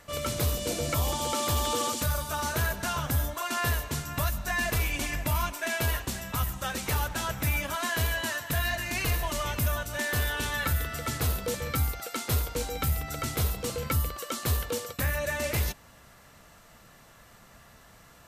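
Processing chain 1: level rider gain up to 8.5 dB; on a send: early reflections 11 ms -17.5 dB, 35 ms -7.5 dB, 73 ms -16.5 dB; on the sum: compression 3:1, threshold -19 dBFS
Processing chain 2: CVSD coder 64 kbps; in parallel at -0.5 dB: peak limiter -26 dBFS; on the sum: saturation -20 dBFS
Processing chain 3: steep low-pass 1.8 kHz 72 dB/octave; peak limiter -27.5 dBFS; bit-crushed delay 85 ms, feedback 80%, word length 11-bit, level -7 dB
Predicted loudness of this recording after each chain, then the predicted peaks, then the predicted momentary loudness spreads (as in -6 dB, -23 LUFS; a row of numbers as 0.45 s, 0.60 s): -23.0 LUFS, -28.0 LUFS, -34.5 LUFS; -9.5 dBFS, -20.5 dBFS, -22.0 dBFS; 3 LU, 21 LU, 3 LU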